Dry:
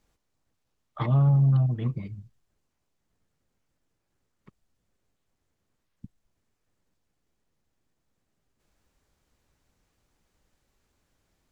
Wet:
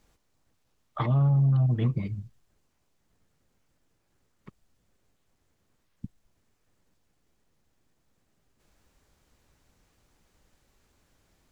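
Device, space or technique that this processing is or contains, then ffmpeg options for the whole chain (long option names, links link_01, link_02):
stacked limiters: -af "alimiter=limit=-20.5dB:level=0:latency=1:release=288,alimiter=limit=-23dB:level=0:latency=1:release=98,volume=5.5dB"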